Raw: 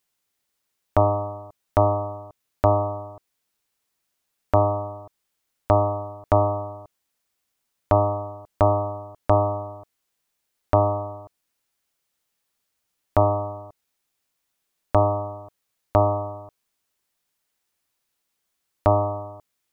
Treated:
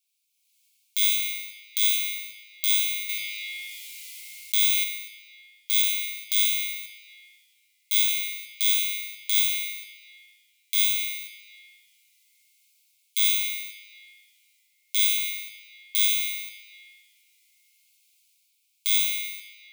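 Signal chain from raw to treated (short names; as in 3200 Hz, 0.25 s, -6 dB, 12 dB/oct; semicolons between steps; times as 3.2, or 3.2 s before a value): FFT order left unsorted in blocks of 16 samples; Chebyshev high-pass 2200 Hz, order 8; AGC gain up to 13 dB; limiter -10.5 dBFS, peak gain reduction 9 dB; shoebox room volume 190 m³, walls hard, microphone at 0.34 m; 3.09–4.84 fast leveller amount 50%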